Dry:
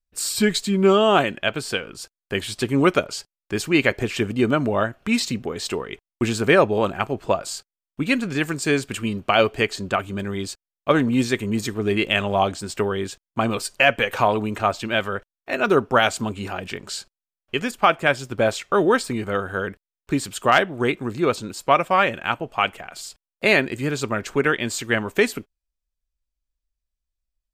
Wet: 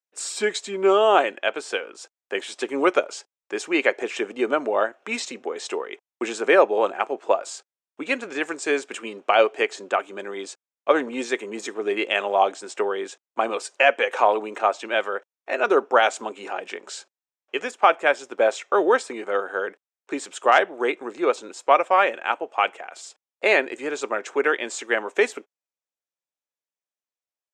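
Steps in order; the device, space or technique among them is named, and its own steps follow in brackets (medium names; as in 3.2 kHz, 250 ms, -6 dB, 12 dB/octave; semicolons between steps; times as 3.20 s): phone speaker on a table (cabinet simulation 340–7800 Hz, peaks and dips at 510 Hz +3 dB, 820 Hz +4 dB, 3 kHz -3 dB, 4.5 kHz -9 dB); trim -1 dB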